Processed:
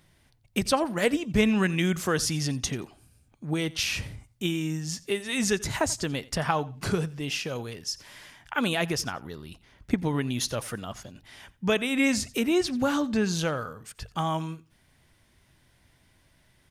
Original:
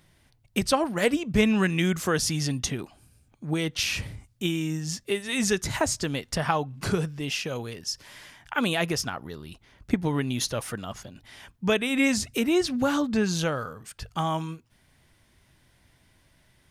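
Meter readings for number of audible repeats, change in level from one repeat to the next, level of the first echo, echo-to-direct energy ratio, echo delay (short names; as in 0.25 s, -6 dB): 2, -14.0 dB, -21.0 dB, -21.0 dB, 88 ms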